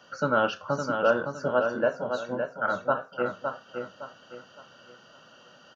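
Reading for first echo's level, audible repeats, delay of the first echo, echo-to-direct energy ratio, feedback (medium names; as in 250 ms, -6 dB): -6.0 dB, 4, 562 ms, -5.5 dB, 34%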